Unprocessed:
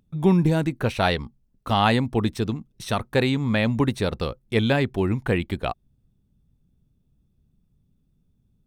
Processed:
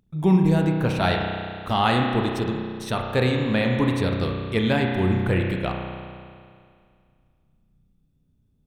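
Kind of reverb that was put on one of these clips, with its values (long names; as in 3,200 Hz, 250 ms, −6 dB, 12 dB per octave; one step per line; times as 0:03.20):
spring reverb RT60 2.2 s, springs 32 ms, chirp 25 ms, DRR 1 dB
level −2 dB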